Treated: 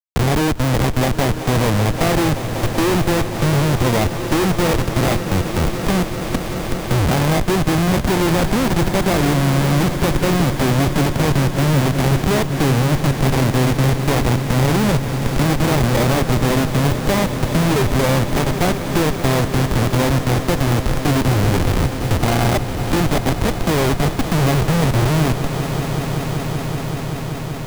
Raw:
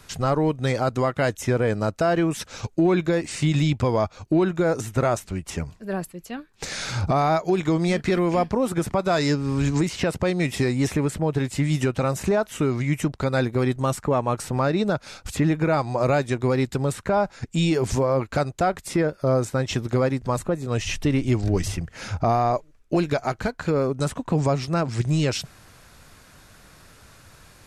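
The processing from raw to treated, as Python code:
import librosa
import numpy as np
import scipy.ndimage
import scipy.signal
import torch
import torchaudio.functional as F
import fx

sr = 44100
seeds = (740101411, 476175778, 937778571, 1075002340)

p1 = scipy.signal.medfilt(x, 41)
p2 = fx.env_lowpass(p1, sr, base_hz=1200.0, full_db=-19.0)
p3 = fx.sample_hold(p2, sr, seeds[0], rate_hz=1400.0, jitter_pct=0)
p4 = p2 + (p3 * librosa.db_to_amplitude(-6.5))
p5 = fx.schmitt(p4, sr, flips_db=-27.5)
p6 = p5 + fx.echo_swell(p5, sr, ms=191, loudest=5, wet_db=-15.5, dry=0)
p7 = fx.band_squash(p6, sr, depth_pct=40)
y = p7 * librosa.db_to_amplitude(6.0)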